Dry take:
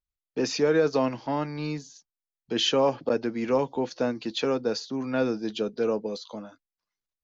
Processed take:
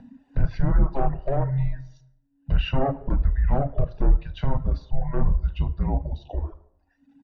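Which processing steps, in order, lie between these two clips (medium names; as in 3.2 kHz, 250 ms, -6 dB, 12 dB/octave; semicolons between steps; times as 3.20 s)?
upward compressor, threshold -30 dBFS; low-pass 1.5 kHz 12 dB/octave; comb 1 ms, depth 80%; frequency shift -280 Hz; overload inside the chain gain 22 dB; low-pass that closes with the level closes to 400 Hz, closed at -19 dBFS; on a send at -4.5 dB: reverberation RT60 0.75 s, pre-delay 22 ms; on the sum: reverb removal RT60 1.2 s; bass shelf 150 Hz +9.5 dB; trim +2 dB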